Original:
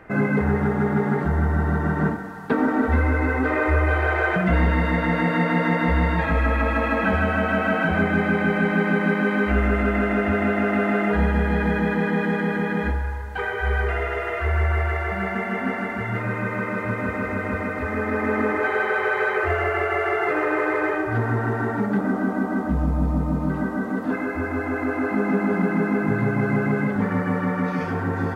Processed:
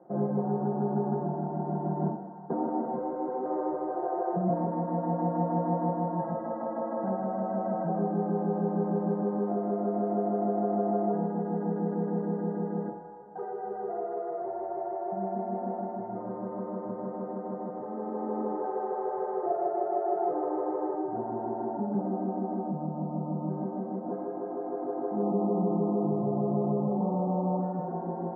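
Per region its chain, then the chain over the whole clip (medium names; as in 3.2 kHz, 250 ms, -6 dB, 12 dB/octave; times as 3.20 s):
25.22–27.61 s: brick-wall FIR low-pass 1.3 kHz + level flattener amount 50%
whole clip: elliptic band-pass 140–770 Hz, stop band 50 dB; tilt EQ +3.5 dB/octave; comb 5.6 ms, depth 83%; trim -2.5 dB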